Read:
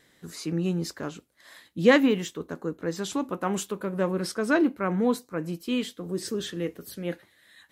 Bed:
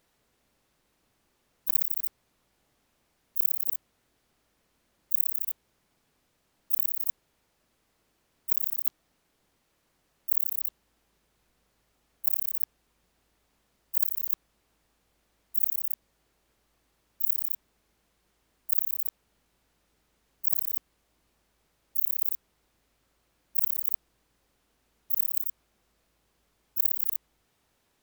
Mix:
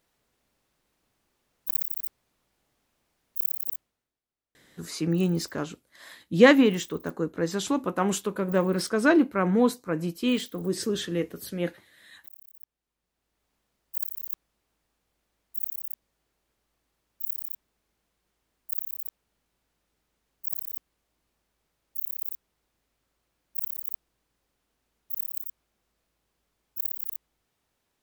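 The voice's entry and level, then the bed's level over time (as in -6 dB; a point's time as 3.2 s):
4.55 s, +2.5 dB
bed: 3.73 s -2.5 dB
4.22 s -22 dB
12.51 s -22 dB
13.46 s -5.5 dB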